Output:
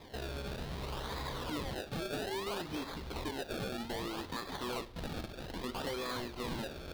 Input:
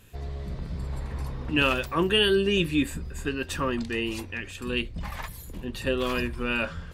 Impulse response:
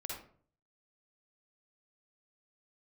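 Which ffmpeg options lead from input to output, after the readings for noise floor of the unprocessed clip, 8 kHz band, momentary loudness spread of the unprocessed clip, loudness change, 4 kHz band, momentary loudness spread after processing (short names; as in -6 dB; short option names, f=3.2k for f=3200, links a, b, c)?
-42 dBFS, -6.5 dB, 14 LU, -12.0 dB, -12.5 dB, 4 LU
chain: -filter_complex "[0:a]asplit=2[a][b];[b]aeval=exprs='(mod(11.2*val(0)+1,2)-1)/11.2':c=same,volume=-8.5dB[c];[a][c]amix=inputs=2:normalize=0,bass=f=250:g=-13,treble=f=4k:g=-3,acrusher=samples=30:mix=1:aa=0.000001:lfo=1:lforange=30:lforate=0.62,acompressor=threshold=-38dB:ratio=6,equalizer=f=1k:t=o:w=1:g=3,equalizer=f=4k:t=o:w=1:g=10,equalizer=f=8k:t=o:w=1:g=-5,asoftclip=type=tanh:threshold=-34.5dB,asplit=2[d][e];[1:a]atrim=start_sample=2205[f];[e][f]afir=irnorm=-1:irlink=0,volume=-13.5dB[g];[d][g]amix=inputs=2:normalize=0,volume=2dB"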